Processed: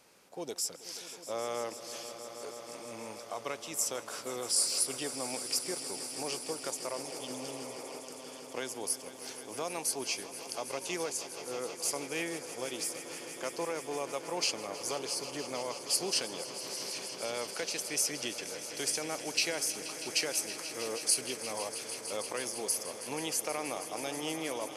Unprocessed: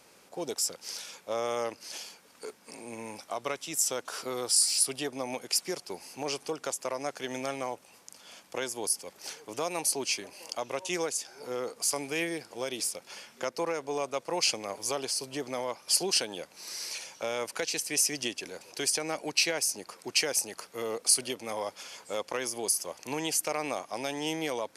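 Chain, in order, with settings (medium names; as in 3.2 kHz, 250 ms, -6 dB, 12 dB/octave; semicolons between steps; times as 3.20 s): spectral replace 7.04–7.97 s, 300–2600 Hz before; echo with a slow build-up 160 ms, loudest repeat 5, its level -15 dB; trim -4.5 dB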